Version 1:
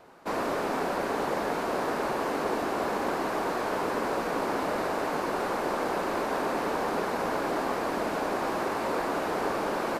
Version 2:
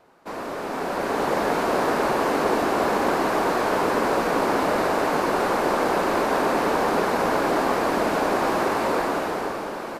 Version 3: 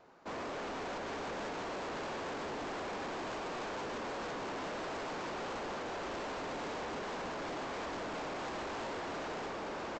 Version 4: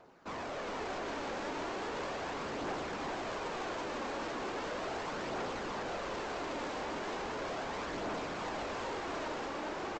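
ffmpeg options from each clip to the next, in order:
-af "dynaudnorm=f=180:g=11:m=10.5dB,volume=-3dB"
-af "alimiter=limit=-19dB:level=0:latency=1:release=371,aresample=16000,asoftclip=type=hard:threshold=-34dB,aresample=44100,volume=-4.5dB"
-filter_complex "[0:a]aphaser=in_gain=1:out_gain=1:delay=3.8:decay=0.31:speed=0.37:type=triangular,asplit=2[a][b];[b]aecho=0:1:410:0.501[c];[a][c]amix=inputs=2:normalize=0"

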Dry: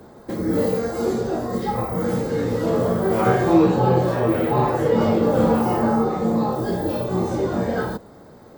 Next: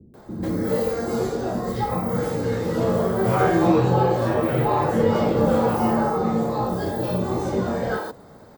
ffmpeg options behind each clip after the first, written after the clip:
-filter_complex "[0:a]acrossover=split=310[a][b];[b]adelay=140[c];[a][c]amix=inputs=2:normalize=0"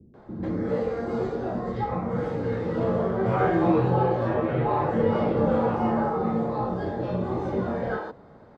-af "lowpass=2.7k,volume=-3.5dB"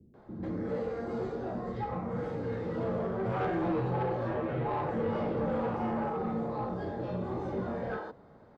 -af "asoftclip=type=tanh:threshold=-19dB,volume=-6dB"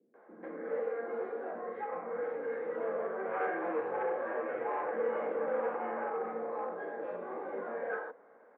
-af "highpass=f=280:w=0.5412,highpass=f=280:w=1.3066,equalizer=f=340:t=q:w=4:g=-3,equalizer=f=490:t=q:w=4:g=9,equalizer=f=730:t=q:w=4:g=4,equalizer=f=1.1k:t=q:w=4:g=5,equalizer=f=1.6k:t=q:w=4:g=10,equalizer=f=2.2k:t=q:w=4:g=7,lowpass=f=2.5k:w=0.5412,lowpass=f=2.5k:w=1.3066,volume=-6.5dB"

